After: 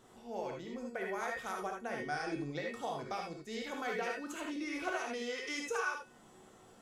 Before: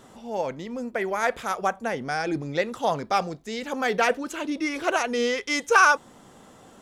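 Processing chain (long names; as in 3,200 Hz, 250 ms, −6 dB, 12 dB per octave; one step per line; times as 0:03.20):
downward compressor 10 to 1, threshold −24 dBFS, peak gain reduction 12.5 dB
tuned comb filter 370 Hz, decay 0.51 s, mix 80%
reverb whose tail is shaped and stops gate 100 ms rising, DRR 0.5 dB
level +1 dB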